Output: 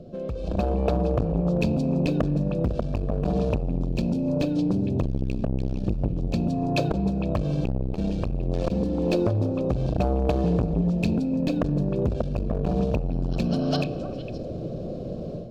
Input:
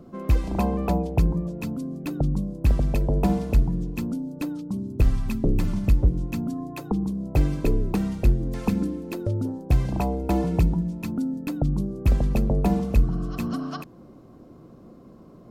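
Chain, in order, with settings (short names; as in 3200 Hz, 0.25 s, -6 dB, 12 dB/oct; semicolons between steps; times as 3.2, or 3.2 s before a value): median filter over 3 samples; tilt shelf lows +6.5 dB; limiter -9.5 dBFS, peak gain reduction 5 dB; compressor 16:1, threshold -27 dBFS, peak gain reduction 16 dB; EQ curve 130 Hz 0 dB, 200 Hz -3 dB, 290 Hz -9 dB, 600 Hz +8 dB, 1000 Hz -16 dB, 2100 Hz +4 dB, 4100 Hz +11 dB, 12000 Hz -6 dB; hard clip -25.5 dBFS, distortion -18 dB; notches 50/100/150/200 Hz; delay with a stepping band-pass 0.153 s, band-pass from 360 Hz, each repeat 1.4 oct, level -6.5 dB; on a send at -15.5 dB: reverb RT60 2.3 s, pre-delay 3 ms; on the sum: AGC gain up to 12.5 dB; Butterworth band-stop 2000 Hz, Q 4.9; core saturation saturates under 300 Hz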